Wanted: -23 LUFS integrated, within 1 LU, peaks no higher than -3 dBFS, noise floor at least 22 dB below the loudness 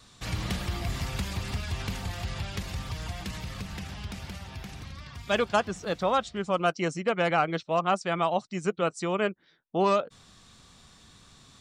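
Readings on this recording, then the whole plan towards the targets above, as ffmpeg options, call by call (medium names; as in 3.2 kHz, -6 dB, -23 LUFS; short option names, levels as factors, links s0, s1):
loudness -30.0 LUFS; peak level -12.5 dBFS; loudness target -23.0 LUFS
-> -af "volume=2.24"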